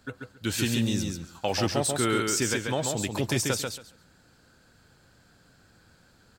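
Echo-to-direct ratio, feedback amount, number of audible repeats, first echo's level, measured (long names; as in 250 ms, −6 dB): −4.0 dB, 18%, 3, −4.0 dB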